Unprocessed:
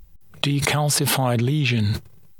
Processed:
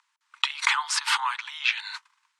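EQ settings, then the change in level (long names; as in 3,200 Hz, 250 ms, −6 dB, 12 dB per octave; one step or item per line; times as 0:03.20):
Butterworth high-pass 910 Hz 96 dB per octave
low-pass filter 8,200 Hz 24 dB per octave
high-shelf EQ 3,100 Hz −11 dB
+5.0 dB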